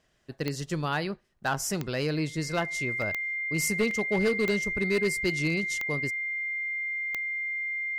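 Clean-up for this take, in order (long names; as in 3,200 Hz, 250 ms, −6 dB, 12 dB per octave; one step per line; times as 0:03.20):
clipped peaks rebuilt −19.5 dBFS
click removal
notch filter 2,100 Hz, Q 30
repair the gap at 0:03.02/0:03.91, 1.8 ms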